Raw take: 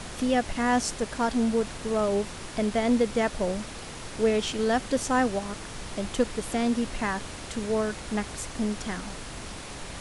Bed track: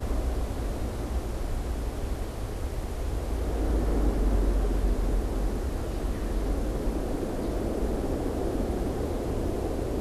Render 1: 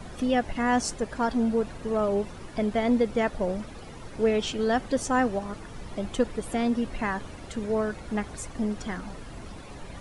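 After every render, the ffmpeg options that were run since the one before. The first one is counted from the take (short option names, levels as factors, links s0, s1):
-af "afftdn=nr=12:nf=-40"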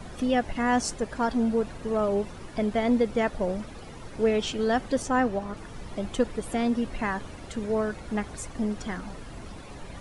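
-filter_complex "[0:a]asettb=1/sr,asplit=3[s0][s1][s2];[s0]atrim=end=5.024[s3];[s1]atrim=start=5.02:end=5.57,asetpts=PTS-STARTPTS,afade=t=in:d=0.004:c=qsin,afade=t=out:st=0.546:d=0.004:c=qsin,highshelf=f=5700:g=-7[s4];[s2]atrim=start=5.566[s5];[s3][s4]acrossfade=d=0.004:c1=hsin:c2=qsin[s6];[s6][s5]acrossfade=d=0.004:c1=qsin:c2=hsin"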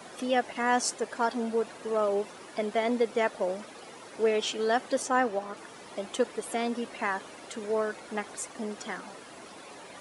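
-af "highpass=360,highshelf=f=8700:g=4.5"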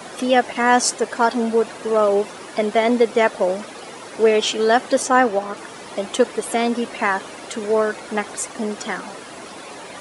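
-af "volume=3.35"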